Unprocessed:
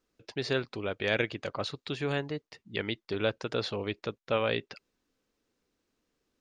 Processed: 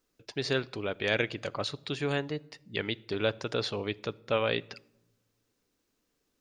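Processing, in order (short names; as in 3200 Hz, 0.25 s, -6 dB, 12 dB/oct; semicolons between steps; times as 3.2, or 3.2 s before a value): high shelf 7200 Hz +9 dB; shoebox room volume 2900 m³, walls furnished, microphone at 0.32 m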